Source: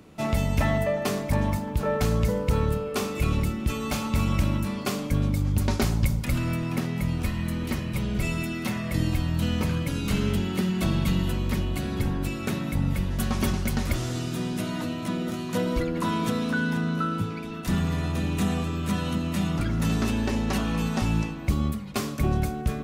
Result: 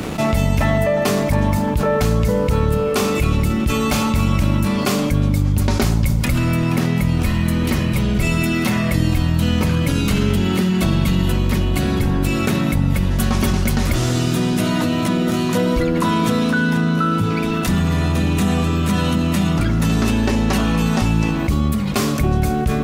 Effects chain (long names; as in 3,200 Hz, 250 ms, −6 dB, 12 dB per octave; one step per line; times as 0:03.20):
dead-zone distortion −57.5 dBFS
envelope flattener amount 70%
level +3.5 dB